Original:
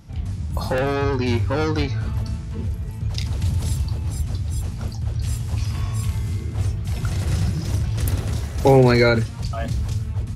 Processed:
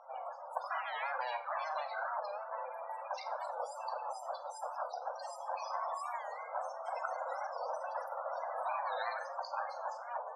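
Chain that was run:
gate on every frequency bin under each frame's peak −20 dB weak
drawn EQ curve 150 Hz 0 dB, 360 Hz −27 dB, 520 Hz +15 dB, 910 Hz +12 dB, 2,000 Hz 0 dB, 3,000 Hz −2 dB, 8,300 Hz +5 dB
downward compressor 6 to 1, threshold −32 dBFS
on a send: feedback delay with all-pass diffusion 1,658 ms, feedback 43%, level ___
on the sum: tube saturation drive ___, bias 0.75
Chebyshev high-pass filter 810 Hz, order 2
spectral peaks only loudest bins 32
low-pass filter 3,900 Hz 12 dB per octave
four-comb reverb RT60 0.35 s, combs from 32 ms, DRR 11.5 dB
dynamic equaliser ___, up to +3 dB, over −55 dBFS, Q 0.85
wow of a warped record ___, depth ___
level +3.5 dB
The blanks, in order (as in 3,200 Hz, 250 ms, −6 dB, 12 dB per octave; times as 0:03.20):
−13 dB, 25 dB, 2,500 Hz, 45 rpm, 160 cents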